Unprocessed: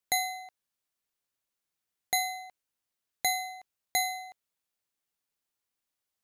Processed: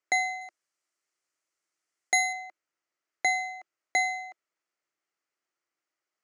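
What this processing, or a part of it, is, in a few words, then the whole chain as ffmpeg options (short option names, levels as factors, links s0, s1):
television speaker: -filter_complex "[0:a]highpass=200,equalizer=f=220:t=q:w=4:g=-7,equalizer=f=340:t=q:w=4:g=9,equalizer=f=620:t=q:w=4:g=5,equalizer=f=1300:t=q:w=4:g=8,equalizer=f=2000:t=q:w=4:g=7,equalizer=f=3700:t=q:w=4:g=-8,lowpass=f=7300:w=0.5412,lowpass=f=7300:w=1.3066,asettb=1/sr,asplit=3[s0][s1][s2];[s0]atrim=end=0.414[s3];[s1]atrim=start=0.41:end=2.33,asetpts=PTS-STARTPTS,afade=t=in:d=0.004:c=qsin,afade=t=out:st=1.916:d=0.004:c=qsin,aemphasis=mode=production:type=50fm[s4];[s2]atrim=start=2.326[s5];[s3][s4]acrossfade=d=0.004:c1=hsin:c2=qsin[s6];[s6][s5]acrossfade=d=0.004:c1=qsin:c2=hsin"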